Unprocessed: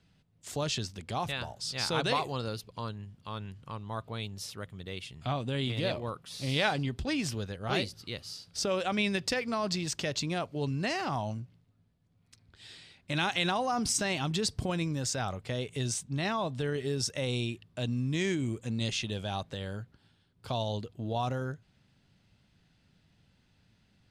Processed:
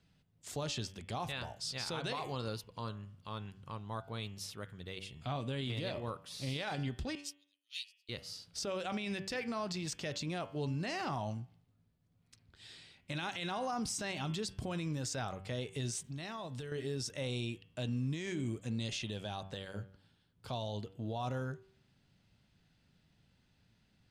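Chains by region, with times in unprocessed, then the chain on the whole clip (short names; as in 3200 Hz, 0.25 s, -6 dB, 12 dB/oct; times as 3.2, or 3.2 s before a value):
7.15–8.09 steep high-pass 2700 Hz + comb 1.6 ms, depth 37% + upward expander 2.5:1, over -49 dBFS
16.04–16.72 high shelf 3800 Hz +6.5 dB + compressor 10:1, threshold -35 dBFS + mismatched tape noise reduction encoder only
whole clip: de-hum 96.23 Hz, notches 36; limiter -25.5 dBFS; gain -3.5 dB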